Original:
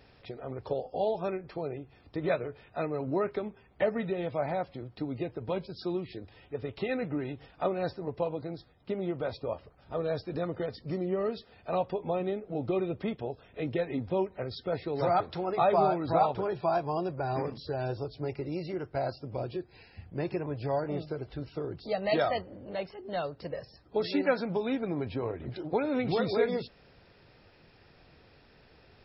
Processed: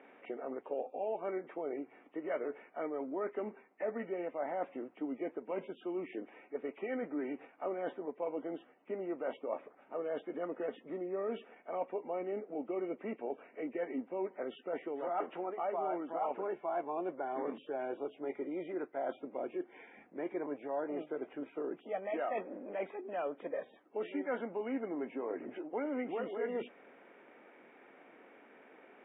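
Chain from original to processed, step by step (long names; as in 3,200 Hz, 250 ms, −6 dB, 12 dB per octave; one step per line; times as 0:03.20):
hearing-aid frequency compression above 1,800 Hz 1.5 to 1
reversed playback
downward compressor 6 to 1, threshold −37 dBFS, peak gain reduction 16 dB
reversed playback
elliptic band-pass filter 250–2,400 Hz, stop band 40 dB
level +3.5 dB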